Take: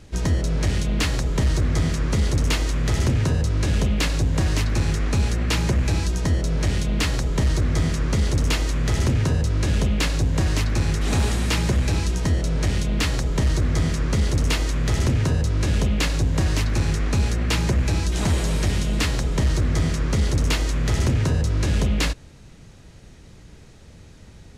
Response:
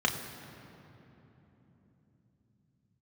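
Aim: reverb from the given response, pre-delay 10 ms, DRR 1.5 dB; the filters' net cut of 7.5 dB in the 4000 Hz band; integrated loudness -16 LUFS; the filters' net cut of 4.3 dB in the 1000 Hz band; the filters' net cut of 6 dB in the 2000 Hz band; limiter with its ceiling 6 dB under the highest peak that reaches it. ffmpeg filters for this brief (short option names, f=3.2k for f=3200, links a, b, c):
-filter_complex "[0:a]equalizer=f=1k:t=o:g=-4,equalizer=f=2k:t=o:g=-4,equalizer=f=4k:t=o:g=-8.5,alimiter=limit=-19.5dB:level=0:latency=1,asplit=2[a][b];[1:a]atrim=start_sample=2205,adelay=10[c];[b][c]afir=irnorm=-1:irlink=0,volume=-12dB[d];[a][d]amix=inputs=2:normalize=0,volume=8.5dB"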